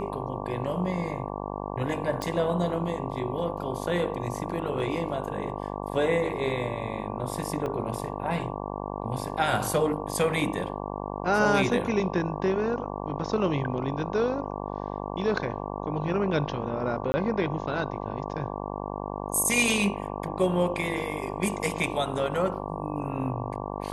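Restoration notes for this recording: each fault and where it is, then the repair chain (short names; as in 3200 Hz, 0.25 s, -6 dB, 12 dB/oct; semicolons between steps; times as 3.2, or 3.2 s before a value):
buzz 50 Hz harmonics 23 -34 dBFS
2.22 pop -17 dBFS
7.66 gap 2.5 ms
17.12–17.14 gap 20 ms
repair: de-click; de-hum 50 Hz, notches 23; interpolate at 7.66, 2.5 ms; interpolate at 17.12, 20 ms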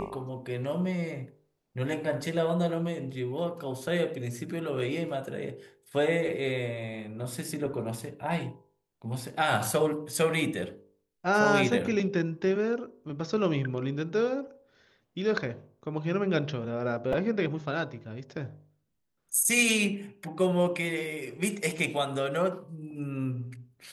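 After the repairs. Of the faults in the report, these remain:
none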